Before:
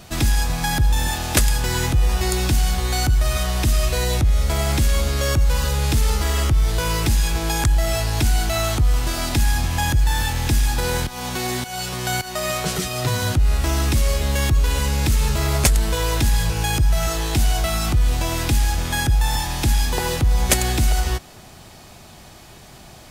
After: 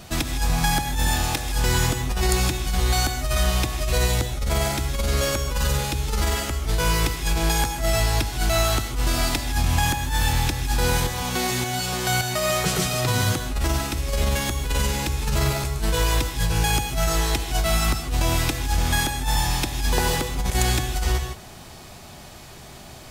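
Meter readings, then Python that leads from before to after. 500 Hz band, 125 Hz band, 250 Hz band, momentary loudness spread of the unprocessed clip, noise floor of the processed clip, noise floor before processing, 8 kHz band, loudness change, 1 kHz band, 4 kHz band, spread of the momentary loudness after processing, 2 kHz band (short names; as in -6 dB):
-0.5 dB, -3.5 dB, -1.5 dB, 4 LU, -42 dBFS, -43 dBFS, -1.5 dB, -2.5 dB, 0.0 dB, -0.5 dB, 4 LU, -0.5 dB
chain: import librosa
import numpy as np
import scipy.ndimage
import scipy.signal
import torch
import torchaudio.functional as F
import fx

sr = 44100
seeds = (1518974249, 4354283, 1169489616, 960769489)

y = fx.over_compress(x, sr, threshold_db=-20.0, ratio=-0.5)
y = fx.rev_gated(y, sr, seeds[0], gate_ms=180, shape='rising', drr_db=6.0)
y = y * 10.0 ** (-2.0 / 20.0)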